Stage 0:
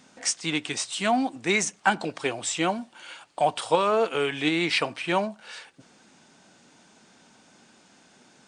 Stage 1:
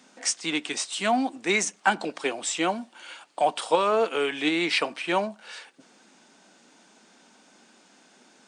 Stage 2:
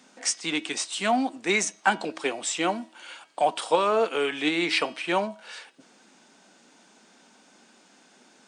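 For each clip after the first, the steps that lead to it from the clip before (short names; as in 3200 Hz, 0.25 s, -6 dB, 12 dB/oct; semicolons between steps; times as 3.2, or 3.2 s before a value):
HPF 200 Hz 24 dB/oct
de-hum 321.2 Hz, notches 20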